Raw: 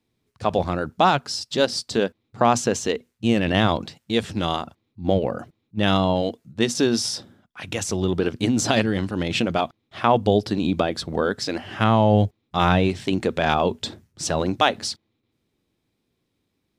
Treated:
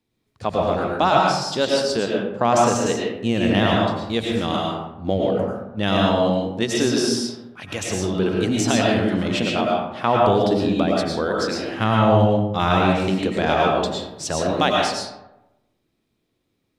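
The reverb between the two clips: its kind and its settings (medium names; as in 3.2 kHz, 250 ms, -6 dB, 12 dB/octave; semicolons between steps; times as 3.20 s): algorithmic reverb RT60 0.94 s, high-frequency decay 0.5×, pre-delay 70 ms, DRR -2 dB; trim -2 dB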